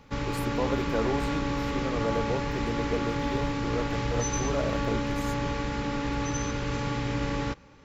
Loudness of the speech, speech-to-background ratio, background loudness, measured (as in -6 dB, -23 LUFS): -34.5 LUFS, -4.0 dB, -30.5 LUFS